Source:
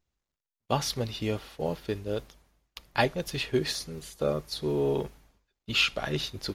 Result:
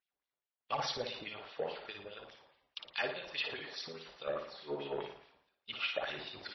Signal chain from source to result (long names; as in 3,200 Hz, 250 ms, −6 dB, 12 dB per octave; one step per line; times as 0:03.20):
in parallel at −2 dB: downward compressor 16 to 1, threshold −34 dBFS, peak gain reduction 15.5 dB
on the sum: auto-filter band-pass sine 4.8 Hz 540–3,500 Hz
soft clipping −27 dBFS, distortion −12 dB
transient designer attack +7 dB, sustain +11 dB
on a send: flutter between parallel walls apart 9.7 metres, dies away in 0.53 s
on the sum: level −5.5 dB
MP3 24 kbit/s 22,050 Hz